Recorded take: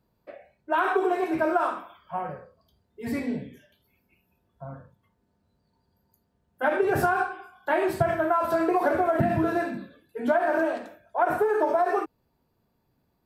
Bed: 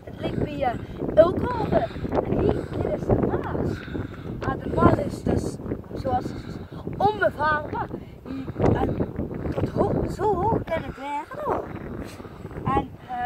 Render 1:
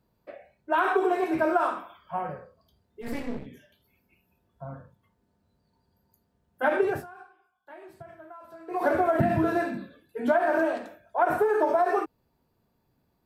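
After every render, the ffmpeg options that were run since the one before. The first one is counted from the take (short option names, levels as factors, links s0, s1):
-filter_complex "[0:a]asplit=3[s0][s1][s2];[s0]afade=t=out:st=3.01:d=0.02[s3];[s1]aeval=exprs='max(val(0),0)':c=same,afade=t=in:st=3.01:d=0.02,afade=t=out:st=3.45:d=0.02[s4];[s2]afade=t=in:st=3.45:d=0.02[s5];[s3][s4][s5]amix=inputs=3:normalize=0,asplit=3[s6][s7][s8];[s6]atrim=end=7.04,asetpts=PTS-STARTPTS,afade=t=out:st=6.83:d=0.21:silence=0.0749894[s9];[s7]atrim=start=7.04:end=8.67,asetpts=PTS-STARTPTS,volume=0.075[s10];[s8]atrim=start=8.67,asetpts=PTS-STARTPTS,afade=t=in:d=0.21:silence=0.0749894[s11];[s9][s10][s11]concat=n=3:v=0:a=1"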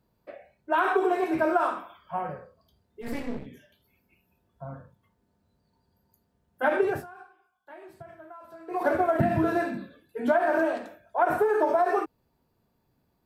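-filter_complex "[0:a]asplit=3[s0][s1][s2];[s0]afade=t=out:st=8.82:d=0.02[s3];[s1]agate=range=0.0224:threshold=0.0631:ratio=3:release=100:detection=peak,afade=t=in:st=8.82:d=0.02,afade=t=out:st=9.34:d=0.02[s4];[s2]afade=t=in:st=9.34:d=0.02[s5];[s3][s4][s5]amix=inputs=3:normalize=0"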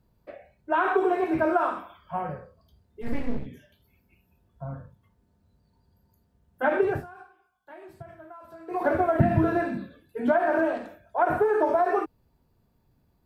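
-filter_complex "[0:a]acrossover=split=3300[s0][s1];[s1]acompressor=threshold=0.00112:ratio=4:attack=1:release=60[s2];[s0][s2]amix=inputs=2:normalize=0,lowshelf=f=120:g=12"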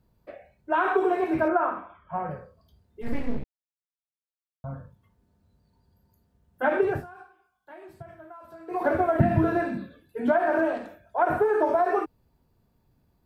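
-filter_complex "[0:a]asettb=1/sr,asplit=3[s0][s1][s2];[s0]atrim=end=1.484[s3];[s1]atrim=start=1.48:end=2.31,asetpts=PTS-STARTPTS,afade=t=in:d=0.004:c=qsin,afade=t=out:st=0.826:d=0.004:c=qsin,lowpass=f=2300:w=0.5412,lowpass=f=2300:w=1.3066[s4];[s2]atrim=start=2.306[s5];[s3][s4]acrossfade=d=0.004:c1=hsin:c2=qsin[s6];[s6][s5]acrossfade=d=0.004:c1=qsin:c2=hsin,asplit=3[s7][s8][s9];[s7]atrim=end=3.44,asetpts=PTS-STARTPTS,afade=t=out:st=3.436:d=0.004:c=hsin[s10];[s8]atrim=start=3.44:end=4.64,asetpts=PTS-STARTPTS,volume=0[s11];[s9]atrim=start=4.64,asetpts=PTS-STARTPTS,afade=t=in:d=0.004:c=hsin[s12];[s10][s11][s12]concat=n=3:v=0:a=1"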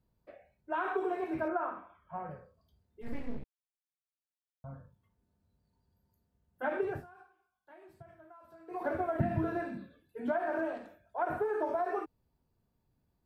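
-af "volume=0.316"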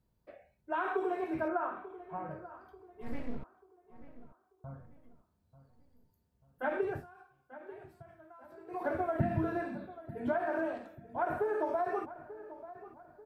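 -filter_complex "[0:a]asplit=2[s0][s1];[s1]adelay=889,lowpass=f=2000:p=1,volume=0.178,asplit=2[s2][s3];[s3]adelay=889,lowpass=f=2000:p=1,volume=0.42,asplit=2[s4][s5];[s5]adelay=889,lowpass=f=2000:p=1,volume=0.42,asplit=2[s6][s7];[s7]adelay=889,lowpass=f=2000:p=1,volume=0.42[s8];[s0][s2][s4][s6][s8]amix=inputs=5:normalize=0"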